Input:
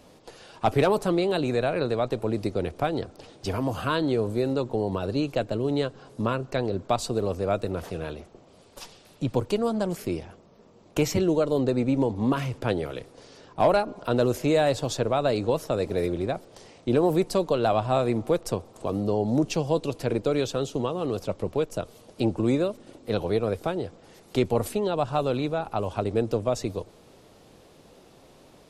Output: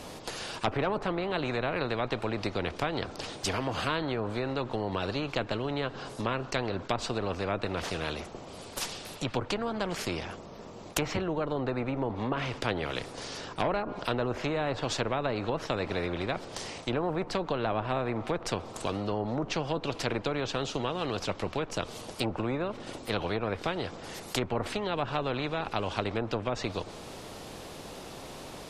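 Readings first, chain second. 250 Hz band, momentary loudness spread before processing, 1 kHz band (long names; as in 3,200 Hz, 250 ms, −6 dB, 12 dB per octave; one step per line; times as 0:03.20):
−7.0 dB, 10 LU, −3.0 dB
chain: treble cut that deepens with the level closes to 1,100 Hz, closed at −19 dBFS
every bin compressed towards the loudest bin 2 to 1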